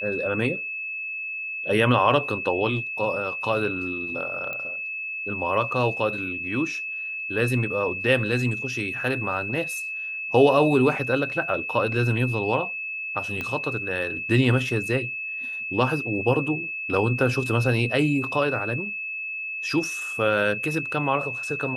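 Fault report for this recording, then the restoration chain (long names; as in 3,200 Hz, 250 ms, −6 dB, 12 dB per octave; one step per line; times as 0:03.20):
whistle 2,600 Hz −29 dBFS
0:04.53: click −19 dBFS
0:13.41: click −16 dBFS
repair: click removal
notch filter 2,600 Hz, Q 30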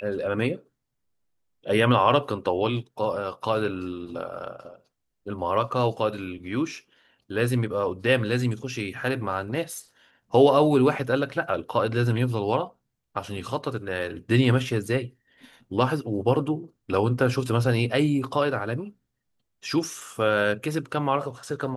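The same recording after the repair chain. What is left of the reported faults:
0:13.41: click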